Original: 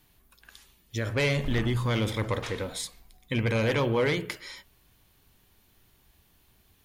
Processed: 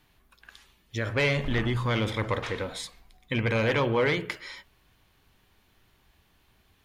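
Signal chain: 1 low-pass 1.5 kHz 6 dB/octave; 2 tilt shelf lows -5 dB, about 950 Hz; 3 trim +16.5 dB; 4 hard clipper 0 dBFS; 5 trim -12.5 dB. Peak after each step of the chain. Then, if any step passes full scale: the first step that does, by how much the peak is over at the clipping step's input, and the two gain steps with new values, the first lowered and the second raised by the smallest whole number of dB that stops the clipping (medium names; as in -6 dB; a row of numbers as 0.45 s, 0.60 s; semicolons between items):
-18.5 dBFS, -20.0 dBFS, -3.5 dBFS, -3.5 dBFS, -16.0 dBFS; nothing clips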